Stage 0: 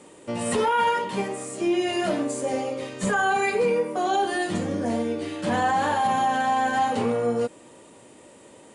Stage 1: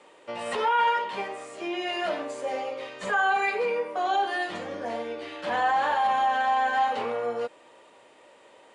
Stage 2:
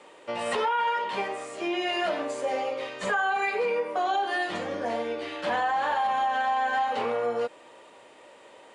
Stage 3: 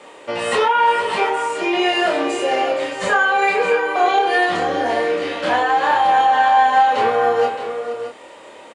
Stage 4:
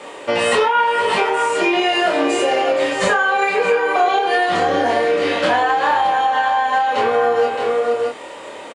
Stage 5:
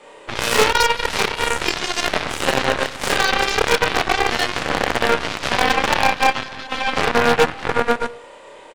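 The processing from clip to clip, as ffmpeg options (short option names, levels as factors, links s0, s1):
-filter_complex "[0:a]acrossover=split=480 4700:gain=0.126 1 0.126[s0][s1][s2];[s0][s1][s2]amix=inputs=3:normalize=0"
-af "acompressor=threshold=0.0501:ratio=6,volume=1.41"
-filter_complex "[0:a]asplit=2[s0][s1];[s1]adelay=28,volume=0.75[s2];[s0][s2]amix=inputs=2:normalize=0,asplit=2[s3][s4];[s4]aecho=0:1:469|619:0.237|0.316[s5];[s3][s5]amix=inputs=2:normalize=0,volume=2.51"
-filter_complex "[0:a]acompressor=threshold=0.1:ratio=6,asplit=2[s0][s1];[s1]adelay=21,volume=0.266[s2];[s0][s2]amix=inputs=2:normalize=0,volume=2.11"
-af "aecho=1:1:30|63|99.3|139.2|183.2:0.631|0.398|0.251|0.158|0.1,aeval=exprs='0.501*(abs(mod(val(0)/0.501+3,4)-2)-1)':c=same,aeval=exprs='0.501*(cos(1*acos(clip(val(0)/0.501,-1,1)))-cos(1*PI/2))+0.112*(cos(2*acos(clip(val(0)/0.501,-1,1)))-cos(2*PI/2))+0.224*(cos(3*acos(clip(val(0)/0.501,-1,1)))-cos(3*PI/2))':c=same,volume=0.891"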